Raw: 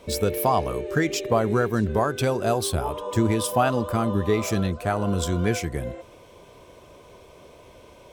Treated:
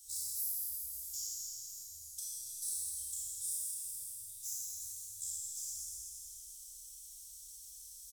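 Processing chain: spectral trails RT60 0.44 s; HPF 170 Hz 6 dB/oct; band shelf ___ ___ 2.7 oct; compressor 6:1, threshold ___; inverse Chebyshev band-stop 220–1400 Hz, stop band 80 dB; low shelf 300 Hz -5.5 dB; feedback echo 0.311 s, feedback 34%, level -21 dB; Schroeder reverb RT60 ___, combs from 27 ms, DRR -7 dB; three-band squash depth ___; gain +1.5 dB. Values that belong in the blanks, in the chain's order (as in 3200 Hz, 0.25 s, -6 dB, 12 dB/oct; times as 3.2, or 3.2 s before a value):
930 Hz, -13 dB, -38 dBFS, 2.4 s, 40%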